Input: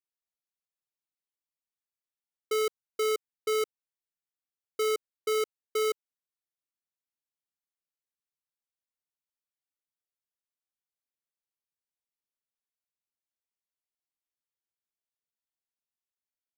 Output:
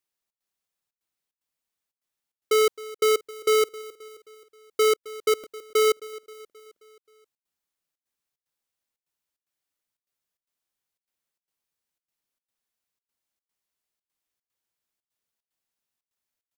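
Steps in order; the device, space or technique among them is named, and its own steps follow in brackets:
trance gate with a delay (gate pattern "xxx.xxxxx." 149 BPM −60 dB; repeating echo 265 ms, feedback 54%, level −18.5 dB)
level +8 dB

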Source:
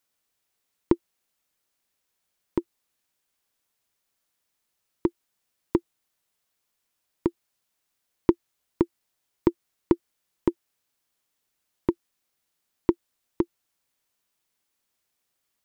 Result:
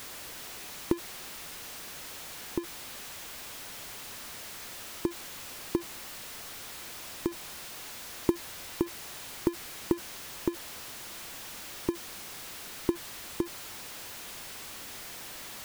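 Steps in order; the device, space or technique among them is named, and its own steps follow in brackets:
early CD player with a faulty converter (converter with a step at zero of −28 dBFS; converter with an unsteady clock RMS 0.028 ms)
level −7 dB

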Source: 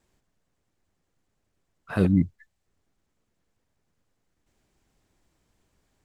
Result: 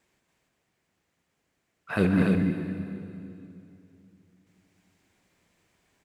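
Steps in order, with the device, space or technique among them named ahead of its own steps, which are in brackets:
stadium PA (high-pass filter 160 Hz 6 dB per octave; parametric band 2,200 Hz +6.5 dB 0.89 octaves; loudspeakers that aren't time-aligned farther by 70 metres −6 dB, 98 metres −4 dB; convolution reverb RT60 2.7 s, pre-delay 38 ms, DRR 7 dB)

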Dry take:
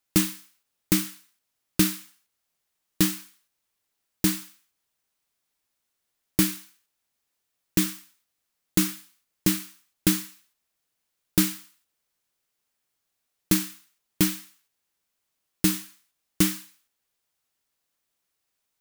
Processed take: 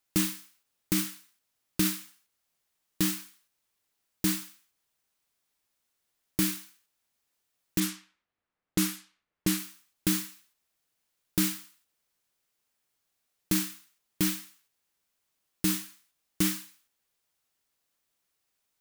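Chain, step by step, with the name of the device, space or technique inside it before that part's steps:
0:07.80–0:09.59: low-pass that shuts in the quiet parts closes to 1,800 Hz, open at −23 dBFS
clipper into limiter (hard clipping −8 dBFS, distortion −31 dB; brickwall limiter −14.5 dBFS, peak gain reduction 6.5 dB)

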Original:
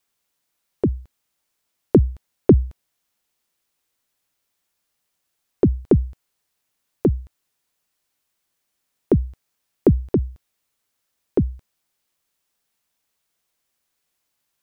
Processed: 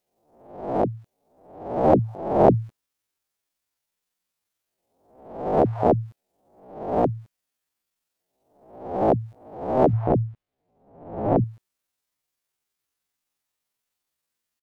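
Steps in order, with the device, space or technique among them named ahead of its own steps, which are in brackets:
peak hold with a rise ahead of every peak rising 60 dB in 0.71 s
chipmunk voice (pitch shifter +10 semitones)
0:09.93–0:11.44: bass and treble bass +7 dB, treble −14 dB
level −6 dB

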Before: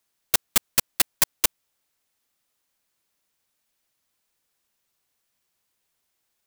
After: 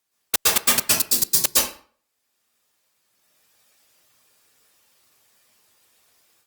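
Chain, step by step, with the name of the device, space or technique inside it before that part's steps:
reverb reduction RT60 1.9 s
0:00.79–0:01.45: flat-topped bell 1,300 Hz −16 dB 2.8 octaves
far-field microphone of a smart speaker (convolution reverb RT60 0.45 s, pre-delay 113 ms, DRR −6 dB; high-pass filter 100 Hz 6 dB per octave; automatic gain control gain up to 13.5 dB; level −1 dB; Opus 48 kbit/s 48,000 Hz)

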